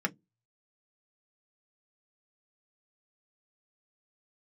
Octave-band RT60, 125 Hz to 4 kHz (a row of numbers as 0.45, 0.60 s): 0.25, 0.25, 0.20, 0.10, 0.10, 0.10 s